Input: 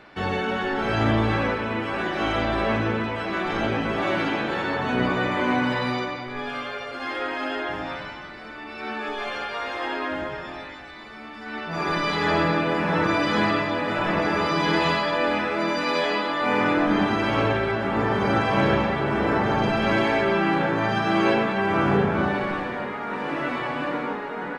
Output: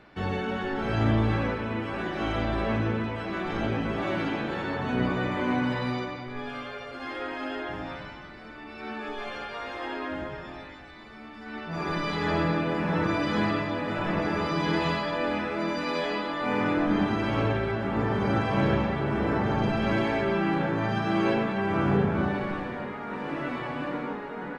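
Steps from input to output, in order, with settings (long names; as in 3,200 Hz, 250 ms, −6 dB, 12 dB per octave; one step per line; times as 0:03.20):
low-shelf EQ 290 Hz +8 dB
level −7 dB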